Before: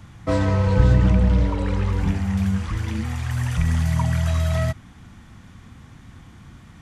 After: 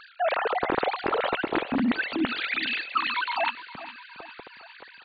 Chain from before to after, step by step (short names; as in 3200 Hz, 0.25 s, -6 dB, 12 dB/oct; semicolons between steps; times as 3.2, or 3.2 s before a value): sine-wave speech; reverse; compressor 6:1, threshold -23 dBFS, peak gain reduction 14 dB; reverse; wide varispeed 1.35×; feedback echo 0.409 s, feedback 55%, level -15.5 dB